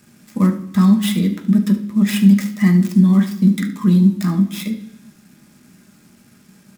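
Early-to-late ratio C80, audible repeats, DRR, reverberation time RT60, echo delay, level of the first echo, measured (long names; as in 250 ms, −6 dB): 15.5 dB, 1, 3.5 dB, 0.65 s, 73 ms, −13.5 dB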